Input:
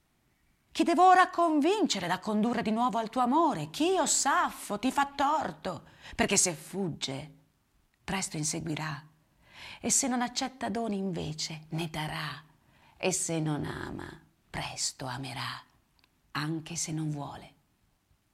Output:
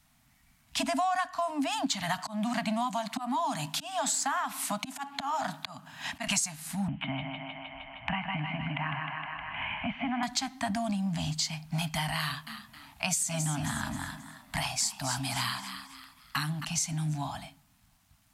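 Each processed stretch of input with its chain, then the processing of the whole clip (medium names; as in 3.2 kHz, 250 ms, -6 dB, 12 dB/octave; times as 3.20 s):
2.18–6.27 s: high-pass 170 Hz + slow attack 351 ms + three bands compressed up and down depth 40%
6.88–10.23 s: rippled Chebyshev low-pass 3.1 kHz, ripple 3 dB + thinning echo 155 ms, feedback 65%, high-pass 290 Hz, level -5 dB + three bands compressed up and down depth 70%
12.20–16.65 s: peaking EQ 12 kHz +5 dB 0.6 oct + frequency-shifting echo 267 ms, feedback 37%, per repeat +70 Hz, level -11.5 dB
whole clip: Chebyshev band-stop 280–640 Hz, order 4; treble shelf 3.9 kHz +6.5 dB; compression 6:1, threshold -32 dBFS; trim +5 dB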